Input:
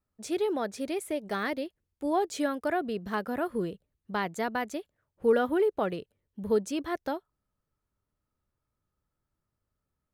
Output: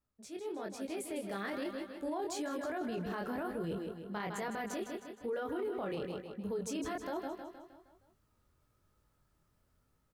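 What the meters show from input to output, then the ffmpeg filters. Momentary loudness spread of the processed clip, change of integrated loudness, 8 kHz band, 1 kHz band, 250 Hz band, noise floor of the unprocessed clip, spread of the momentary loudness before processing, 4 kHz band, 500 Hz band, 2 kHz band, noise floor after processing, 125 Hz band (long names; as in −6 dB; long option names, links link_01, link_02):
6 LU, −8.5 dB, −3.0 dB, −8.5 dB, −6.5 dB, −85 dBFS, 10 LU, −6.0 dB, −9.0 dB, −8.0 dB, −75 dBFS, −3.0 dB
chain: -af "areverse,acompressor=threshold=-40dB:ratio=5,areverse,aecho=1:1:156|312|468|624|780|936:0.316|0.161|0.0823|0.0419|0.0214|0.0109,flanger=delay=18.5:depth=6.8:speed=1.1,dynaudnorm=framelen=320:gausssize=7:maxgain=11dB,alimiter=level_in=7.5dB:limit=-24dB:level=0:latency=1:release=22,volume=-7.5dB,volume=1dB"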